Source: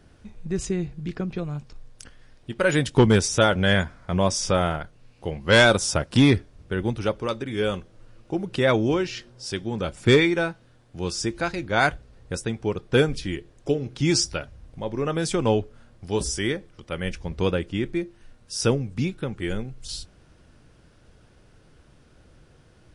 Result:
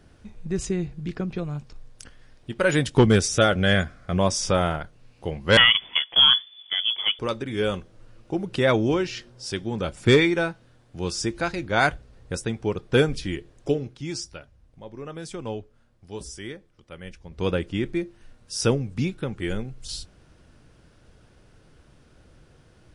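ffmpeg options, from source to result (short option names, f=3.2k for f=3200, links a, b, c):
-filter_complex "[0:a]asettb=1/sr,asplit=3[a][b][c];[a]atrim=end=3.034[d];[b]atrim=start=3.03:end=4.19,asetpts=PTS-STARTPTS,afade=t=in:d=0.004:c=qsin,afade=t=out:st=1.156:d=0.004:c=qsin,asuperstop=centerf=930:order=4:qfactor=4.4[e];[c]atrim=start=4.186[f];[d][e]acrossfade=d=0.004:c1=hsin:c2=qsin[g];[g][f]acrossfade=d=0.004:c1=qsin:c2=hsin,asettb=1/sr,asplit=3[h][i][j];[h]atrim=end=5.574[k];[i]atrim=start=5.57:end=7.19,asetpts=PTS-STARTPTS,afade=t=in:d=0.004:c=qsin,afade=t=out:st=1.616:d=0.004:c=qsin,lowpass=f=3k:t=q:w=0.5098,lowpass=f=3k:t=q:w=0.6013,lowpass=f=3k:t=q:w=0.9,lowpass=f=3k:t=q:w=2.563,afreqshift=-3500[l];[j]atrim=start=7.186[m];[k][l]acrossfade=d=0.004:c1=hsin:c2=qsin[n];[n][m]acrossfade=d=0.004:c1=qsin:c2=hsin,asplit=3[o][p][q];[o]atrim=end=13.98,asetpts=PTS-STARTPTS,afade=t=out:st=13.77:d=0.21:silence=0.281838[r];[p]atrim=start=13.98:end=17.31,asetpts=PTS-STARTPTS,volume=-11dB[s];[q]atrim=start=17.31,asetpts=PTS-STARTPTS,afade=t=in:d=0.21:silence=0.281838[t];[r][s][t]concat=n=3:v=0:a=1"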